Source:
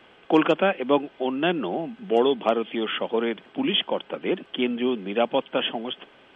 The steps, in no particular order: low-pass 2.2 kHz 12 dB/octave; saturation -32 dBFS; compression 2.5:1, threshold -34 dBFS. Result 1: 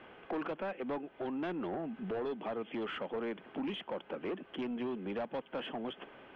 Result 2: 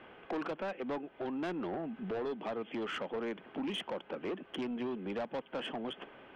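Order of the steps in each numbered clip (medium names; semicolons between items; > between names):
compression > saturation > low-pass; low-pass > compression > saturation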